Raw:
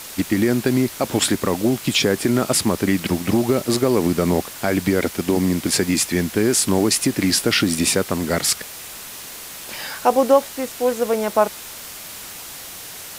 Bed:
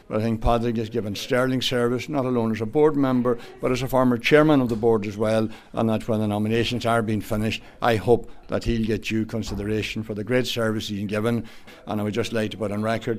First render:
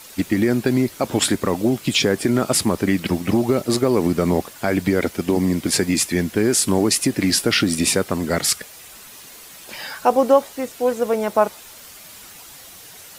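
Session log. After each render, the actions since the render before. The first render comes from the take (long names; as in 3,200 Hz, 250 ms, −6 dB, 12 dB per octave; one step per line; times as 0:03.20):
broadband denoise 8 dB, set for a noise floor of −36 dBFS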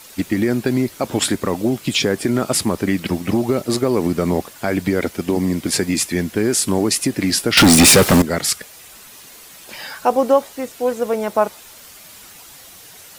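0:07.57–0:08.22: leveller curve on the samples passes 5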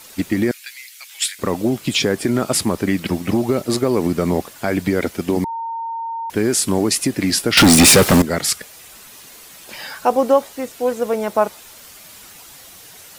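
0:00.51–0:01.39: Chebyshev high-pass filter 2,100 Hz, order 3
0:05.44–0:06.30: beep over 915 Hz −23 dBFS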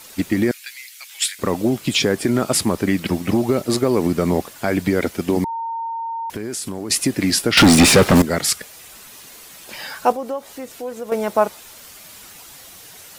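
0:05.87–0:06.90: downward compressor, threshold −24 dBFS
0:07.46–0:08.15: low-pass filter 7,600 Hz → 3,100 Hz 6 dB per octave
0:10.12–0:11.12: downward compressor 2 to 1, threshold −32 dBFS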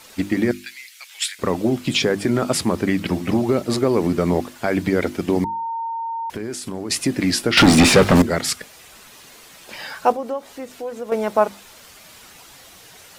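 high-shelf EQ 7,800 Hz −9.5 dB
mains-hum notches 50/100/150/200/250/300/350 Hz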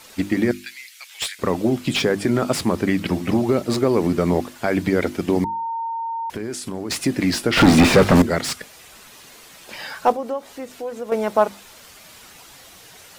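slew-rate limiting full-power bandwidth 410 Hz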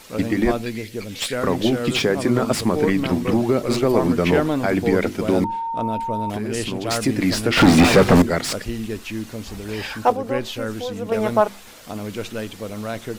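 mix in bed −4.5 dB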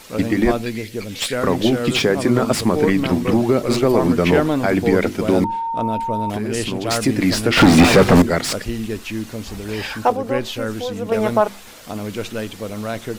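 level +2.5 dB
brickwall limiter −3 dBFS, peak gain reduction 2.5 dB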